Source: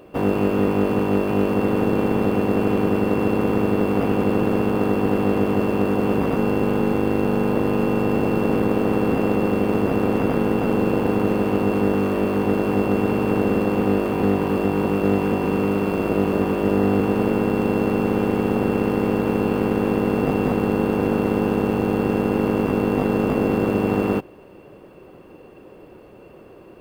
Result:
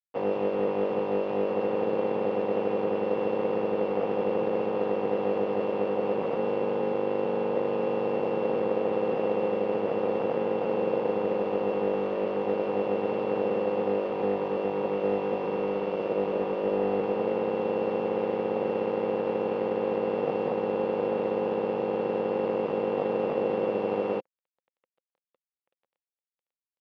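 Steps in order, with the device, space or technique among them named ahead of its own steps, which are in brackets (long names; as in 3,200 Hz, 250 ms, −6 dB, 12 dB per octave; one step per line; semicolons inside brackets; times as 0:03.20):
blown loudspeaker (dead-zone distortion −35 dBFS; loudspeaker in its box 210–4,300 Hz, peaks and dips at 270 Hz −8 dB, 520 Hz +10 dB, 840 Hz +4 dB, 1,500 Hz −4 dB, 4,100 Hz −4 dB)
level −8 dB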